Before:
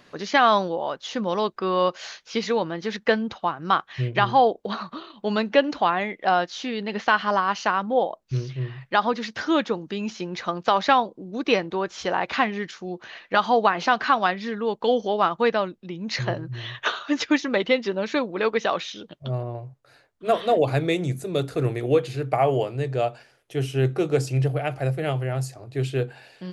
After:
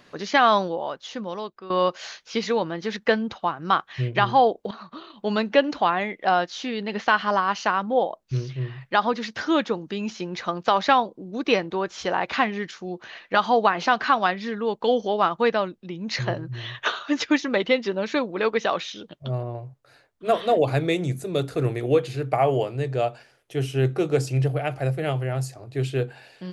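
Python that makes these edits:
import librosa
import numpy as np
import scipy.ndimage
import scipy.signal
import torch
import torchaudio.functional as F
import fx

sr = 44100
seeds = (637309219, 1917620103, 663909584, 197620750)

y = fx.edit(x, sr, fx.fade_out_to(start_s=0.62, length_s=1.08, floor_db=-16.0),
    fx.fade_in_from(start_s=4.71, length_s=0.43, floor_db=-14.5), tone=tone)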